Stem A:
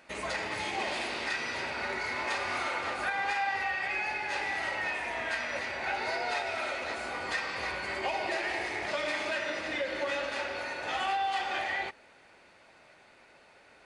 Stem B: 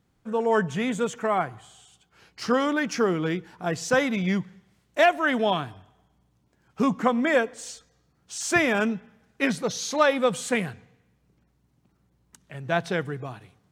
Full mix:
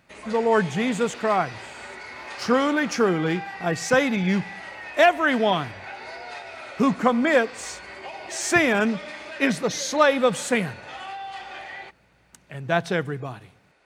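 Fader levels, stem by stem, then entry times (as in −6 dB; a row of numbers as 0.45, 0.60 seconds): −5.0, +2.5 decibels; 0.00, 0.00 seconds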